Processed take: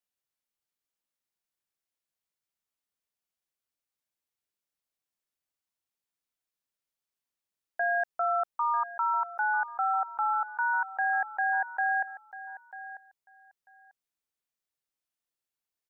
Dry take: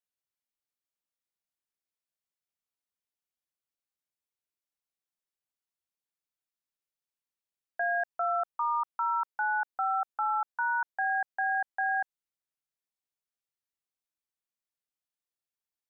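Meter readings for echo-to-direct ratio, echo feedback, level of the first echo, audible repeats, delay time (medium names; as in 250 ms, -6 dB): -15.0 dB, 16%, -15.0 dB, 2, 943 ms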